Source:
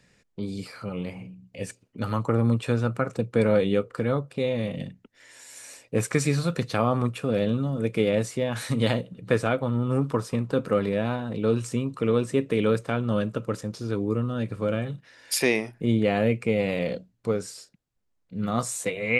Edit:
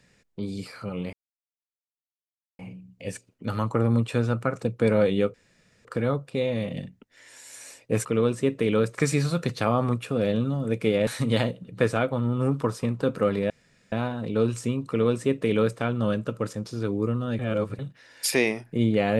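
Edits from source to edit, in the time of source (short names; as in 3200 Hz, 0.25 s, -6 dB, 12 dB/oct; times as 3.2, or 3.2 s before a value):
1.13 insert silence 1.46 s
3.88 insert room tone 0.51 s
8.2–8.57 cut
11 insert room tone 0.42 s
11.96–12.86 copy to 6.08
14.47–14.87 reverse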